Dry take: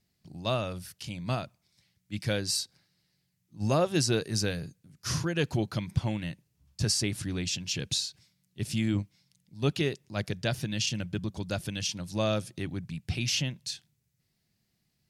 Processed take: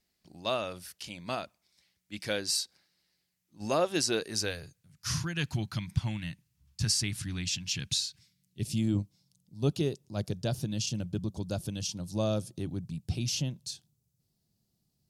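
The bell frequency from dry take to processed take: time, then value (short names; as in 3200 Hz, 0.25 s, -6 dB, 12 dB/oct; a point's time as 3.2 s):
bell -15 dB 1.3 oct
4.29 s 120 Hz
5.17 s 470 Hz
8.08 s 470 Hz
8.87 s 2000 Hz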